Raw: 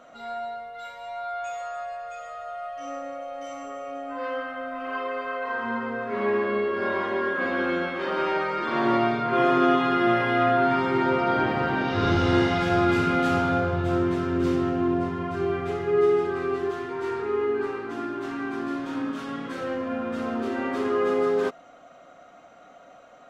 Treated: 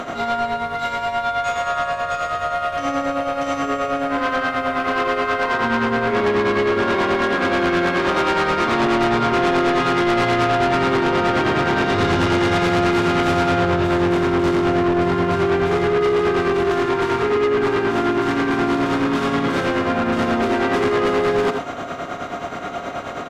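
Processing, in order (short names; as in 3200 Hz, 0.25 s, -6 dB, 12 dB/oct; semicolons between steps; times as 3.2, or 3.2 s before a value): per-bin compression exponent 0.6; bell 520 Hz -3 dB 0.24 oct; in parallel at -3 dB: limiter -15.5 dBFS, peak gain reduction 8 dB; on the sum: tremolo 9.4 Hz, depth 61%; echo 86 ms -9.5 dB; soft clip -22 dBFS, distortion -8 dB; gain +7.5 dB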